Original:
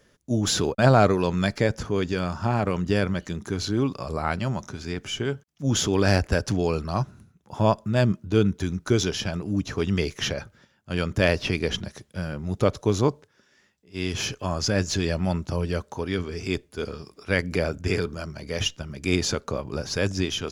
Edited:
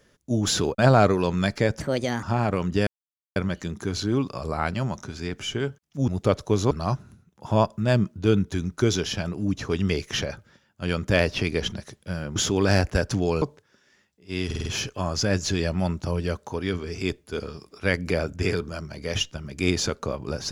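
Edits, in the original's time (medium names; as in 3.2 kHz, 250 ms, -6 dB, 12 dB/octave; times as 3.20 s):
1.80–2.37 s: speed 133%
3.01 s: insert silence 0.49 s
5.73–6.79 s: swap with 12.44–13.07 s
14.11 s: stutter 0.05 s, 5 plays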